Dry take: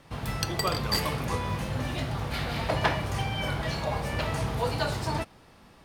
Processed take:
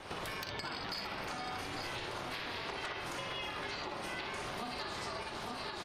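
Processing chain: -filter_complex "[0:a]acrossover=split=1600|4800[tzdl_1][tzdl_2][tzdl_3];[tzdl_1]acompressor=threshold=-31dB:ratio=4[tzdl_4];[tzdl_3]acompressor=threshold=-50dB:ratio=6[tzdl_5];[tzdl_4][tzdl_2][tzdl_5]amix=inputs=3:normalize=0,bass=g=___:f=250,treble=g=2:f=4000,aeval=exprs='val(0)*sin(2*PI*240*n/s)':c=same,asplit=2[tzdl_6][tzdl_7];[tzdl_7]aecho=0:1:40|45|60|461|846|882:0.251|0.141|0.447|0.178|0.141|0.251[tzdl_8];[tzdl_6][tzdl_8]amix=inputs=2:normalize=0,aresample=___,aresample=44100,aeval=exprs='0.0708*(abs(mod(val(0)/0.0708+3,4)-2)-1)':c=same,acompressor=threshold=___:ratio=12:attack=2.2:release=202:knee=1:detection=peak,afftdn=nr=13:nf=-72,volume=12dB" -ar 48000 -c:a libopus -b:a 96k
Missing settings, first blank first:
-13, 32000, -47dB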